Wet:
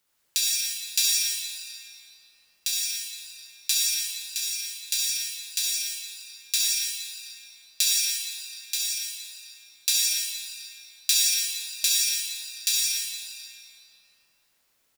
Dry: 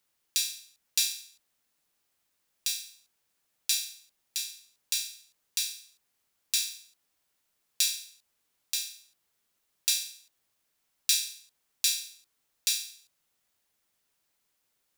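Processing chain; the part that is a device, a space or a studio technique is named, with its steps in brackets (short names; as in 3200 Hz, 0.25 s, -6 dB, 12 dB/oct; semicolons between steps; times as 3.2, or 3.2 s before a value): cave (echo 0.17 s -9.5 dB; reverb RT60 2.8 s, pre-delay 56 ms, DRR -4 dB); gain +2 dB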